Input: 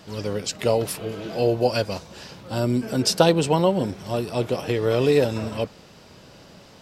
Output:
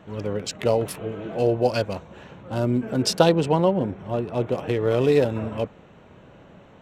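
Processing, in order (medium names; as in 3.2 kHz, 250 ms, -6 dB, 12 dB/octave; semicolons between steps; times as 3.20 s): local Wiener filter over 9 samples; treble shelf 4.5 kHz -3.5 dB, from 3.29 s -11.5 dB, from 4.50 s -4 dB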